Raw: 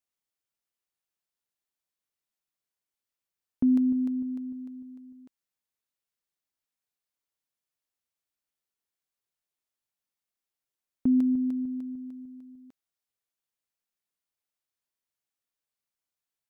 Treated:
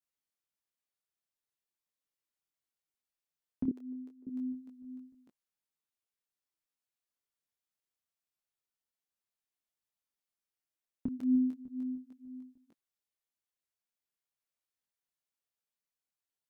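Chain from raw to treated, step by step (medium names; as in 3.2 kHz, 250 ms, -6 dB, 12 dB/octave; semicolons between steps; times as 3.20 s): dynamic bell 670 Hz, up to -3 dB, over -41 dBFS, Q 1.3; 3.68–4.27 s: ladder high-pass 340 Hz, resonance 60%; detune thickener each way 14 cents; trim -1 dB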